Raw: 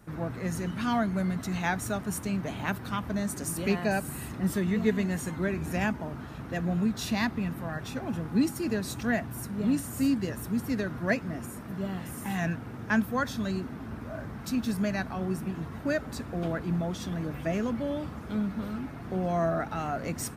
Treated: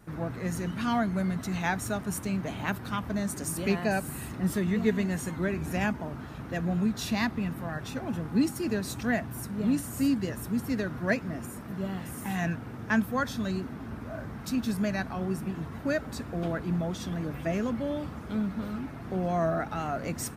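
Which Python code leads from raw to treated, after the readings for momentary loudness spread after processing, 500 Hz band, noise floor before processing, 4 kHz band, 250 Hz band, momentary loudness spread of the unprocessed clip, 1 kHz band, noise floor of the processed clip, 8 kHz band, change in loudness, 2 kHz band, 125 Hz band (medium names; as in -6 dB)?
8 LU, 0.0 dB, -41 dBFS, 0.0 dB, 0.0 dB, 8 LU, 0.0 dB, -41 dBFS, 0.0 dB, 0.0 dB, 0.0 dB, 0.0 dB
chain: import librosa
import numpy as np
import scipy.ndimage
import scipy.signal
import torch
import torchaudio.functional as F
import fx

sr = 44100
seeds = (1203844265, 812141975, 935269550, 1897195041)

y = fx.vibrato(x, sr, rate_hz=4.2, depth_cents=31.0)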